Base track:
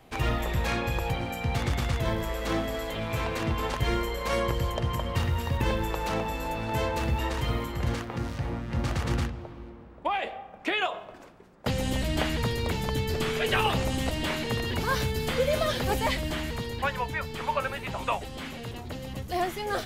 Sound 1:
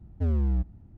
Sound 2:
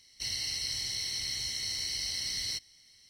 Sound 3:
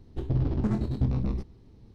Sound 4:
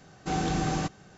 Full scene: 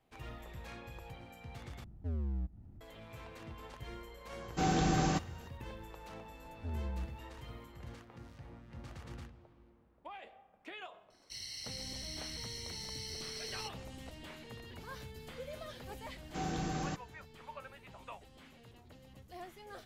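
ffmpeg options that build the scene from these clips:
ffmpeg -i bed.wav -i cue0.wav -i cue1.wav -i cue2.wav -i cue3.wav -filter_complex "[1:a]asplit=2[link_01][link_02];[4:a]asplit=2[link_03][link_04];[0:a]volume=-20dB[link_05];[link_01]acompressor=mode=upward:threshold=-32dB:ratio=2.5:attack=3.2:release=140:knee=2.83:detection=peak[link_06];[link_05]asplit=2[link_07][link_08];[link_07]atrim=end=1.844[link_09];[link_06]atrim=end=0.97,asetpts=PTS-STARTPTS,volume=-11.5dB[link_10];[link_08]atrim=start=2.806[link_11];[link_03]atrim=end=1.17,asetpts=PTS-STARTPTS,volume=-2dB,afade=type=in:duration=0.004:curve=hsin,afade=type=out:start_time=1.166:duration=0.004:curve=hsin,adelay=4310[link_12];[link_02]atrim=end=0.97,asetpts=PTS-STARTPTS,volume=-14.5dB,afade=type=in:duration=0.004:curve=hsin,afade=type=out:start_time=0.966:duration=0.004:curve=hsin,adelay=6430[link_13];[2:a]atrim=end=3.09,asetpts=PTS-STARTPTS,volume=-10.5dB,afade=type=in:duration=0.004:curve=hsin,afade=type=out:start_time=3.086:duration=0.004:curve=hsin,adelay=11100[link_14];[link_04]atrim=end=1.17,asetpts=PTS-STARTPTS,volume=-9dB,afade=type=in:duration=0.004:curve=hsin,afade=type=out:start_time=1.166:duration=0.004:curve=hsin,adelay=16080[link_15];[link_09][link_10]acrossfade=duration=0.004:curve1=hsin:curve2=hsin[link_16];[link_16][link_11]acrossfade=duration=0.004:curve1=hsin:curve2=hsin[link_17];[link_17][link_12][link_13][link_14][link_15]amix=inputs=5:normalize=0" out.wav

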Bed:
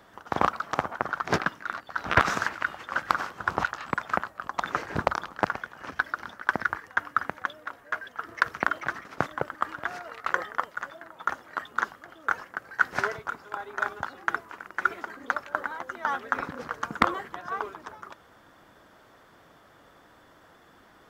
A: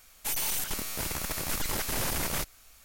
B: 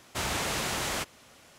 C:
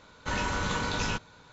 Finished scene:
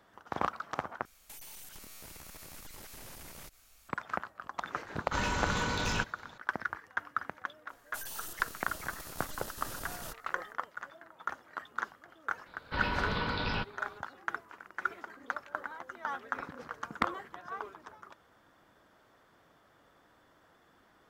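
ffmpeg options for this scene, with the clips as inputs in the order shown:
ffmpeg -i bed.wav -i cue0.wav -i cue1.wav -i cue2.wav -filter_complex "[1:a]asplit=2[link_01][link_02];[3:a]asplit=2[link_03][link_04];[0:a]volume=-8.5dB[link_05];[link_01]acompressor=threshold=-40dB:ratio=6:attack=3.2:release=140:knee=1:detection=peak[link_06];[link_03]volume=24.5dB,asoftclip=hard,volume=-24.5dB[link_07];[link_02]equalizer=frequency=2200:width=6.9:gain=-15[link_08];[link_04]aresample=11025,aresample=44100[link_09];[link_05]asplit=2[link_10][link_11];[link_10]atrim=end=1.054[link_12];[link_06]atrim=end=2.84,asetpts=PTS-STARTPTS,volume=-6dB[link_13];[link_11]atrim=start=3.886[link_14];[link_07]atrim=end=1.52,asetpts=PTS-STARTPTS,volume=-1.5dB,afade=type=in:duration=0.004:curve=hsin,afade=type=out:start_time=1.516:duration=0.004:curve=hsin,adelay=4860[link_15];[link_08]atrim=end=2.84,asetpts=PTS-STARTPTS,volume=-12.5dB,afade=type=in:duration=0.004:curve=hsin,afade=type=out:start_time=2.836:duration=0.004:curve=hsin,adelay=7690[link_16];[link_09]atrim=end=1.52,asetpts=PTS-STARTPTS,volume=-3dB,afade=type=in:duration=0.004:curve=hsin,afade=type=out:start_time=1.516:duration=0.004:curve=hsin,adelay=12460[link_17];[link_12][link_13]acrossfade=duration=0.004:curve1=hsin:curve2=hsin[link_18];[link_18][link_14]acrossfade=duration=0.004:curve1=hsin:curve2=hsin[link_19];[link_19][link_15][link_16][link_17]amix=inputs=4:normalize=0" out.wav

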